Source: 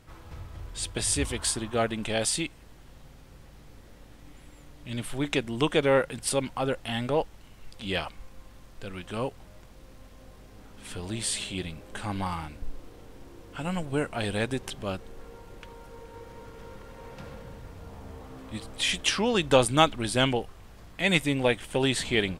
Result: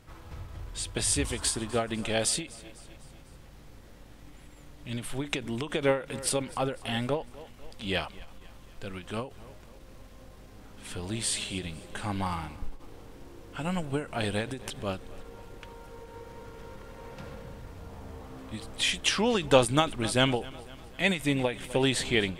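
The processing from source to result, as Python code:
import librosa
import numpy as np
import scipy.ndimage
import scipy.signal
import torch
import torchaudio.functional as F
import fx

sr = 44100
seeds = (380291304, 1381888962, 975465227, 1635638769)

y = fx.echo_feedback(x, sr, ms=250, feedback_pct=54, wet_db=-20.5)
y = fx.end_taper(y, sr, db_per_s=160.0)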